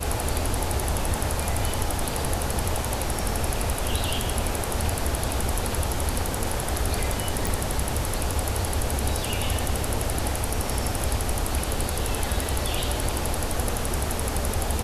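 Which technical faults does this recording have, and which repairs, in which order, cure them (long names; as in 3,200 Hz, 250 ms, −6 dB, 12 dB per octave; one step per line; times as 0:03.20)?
0:07.47: click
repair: click removal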